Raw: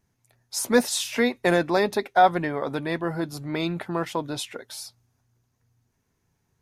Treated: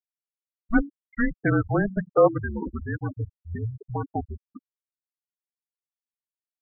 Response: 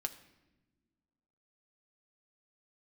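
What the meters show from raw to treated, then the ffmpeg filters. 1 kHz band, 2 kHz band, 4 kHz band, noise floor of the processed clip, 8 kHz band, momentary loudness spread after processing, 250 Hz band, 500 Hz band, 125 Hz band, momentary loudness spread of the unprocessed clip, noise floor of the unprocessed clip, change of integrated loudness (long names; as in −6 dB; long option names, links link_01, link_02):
−8.0 dB, −3.5 dB, below −40 dB, below −85 dBFS, below −40 dB, 14 LU, 0.0 dB, −1.5 dB, +5.0 dB, 14 LU, −73 dBFS, −2.0 dB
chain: -af "highpass=frequency=240:width_type=q:width=0.5412,highpass=frequency=240:width_type=q:width=1.307,lowpass=frequency=2600:width_type=q:width=0.5176,lowpass=frequency=2600:width_type=q:width=0.7071,lowpass=frequency=2600:width_type=q:width=1.932,afreqshift=-220,bandreject=frequency=46.96:width_type=h:width=4,bandreject=frequency=93.92:width_type=h:width=4,bandreject=frequency=140.88:width_type=h:width=4,bandreject=frequency=187.84:width_type=h:width=4,bandreject=frequency=234.8:width_type=h:width=4,bandreject=frequency=281.76:width_type=h:width=4,bandreject=frequency=328.72:width_type=h:width=4,afftfilt=real='re*gte(hypot(re,im),0.126)':imag='im*gte(hypot(re,im),0.126)':win_size=1024:overlap=0.75"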